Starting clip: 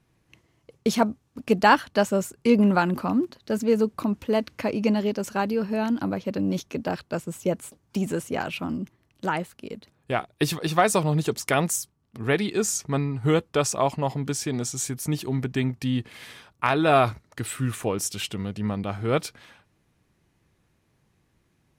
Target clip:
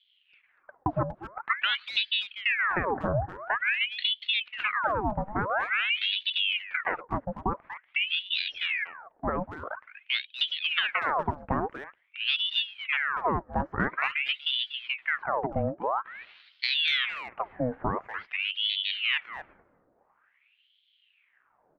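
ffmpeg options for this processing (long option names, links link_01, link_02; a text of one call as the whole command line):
ffmpeg -i in.wav -filter_complex "[0:a]lowpass=frequency=1100:width=0.5412,lowpass=frequency=1100:width=1.3066,acompressor=threshold=-23dB:ratio=16,asplit=2[link_01][link_02];[link_02]adelay=240,highpass=300,lowpass=3400,asoftclip=type=hard:threshold=-23dB,volume=-10dB[link_03];[link_01][link_03]amix=inputs=2:normalize=0,aeval=exprs='val(0)*sin(2*PI*1800*n/s+1800*0.8/0.48*sin(2*PI*0.48*n/s))':channel_layout=same,volume=2.5dB" out.wav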